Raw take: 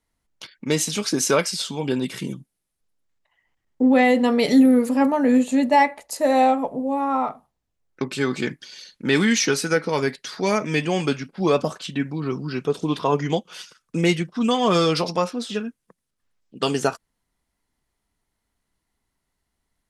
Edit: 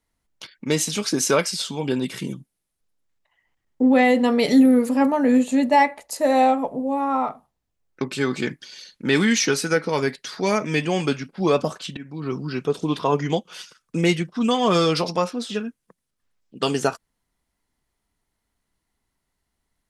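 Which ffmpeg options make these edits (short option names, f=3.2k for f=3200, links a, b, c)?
-filter_complex "[0:a]asplit=2[a][b];[a]atrim=end=11.97,asetpts=PTS-STARTPTS,afade=t=out:st=11.966:d=0.004:c=hsin:silence=0.125893[c];[b]atrim=start=11.97,asetpts=PTS-STARTPTS,afade=t=in:d=0.38:silence=0.125893[d];[c][d]concat=n=2:v=0:a=1"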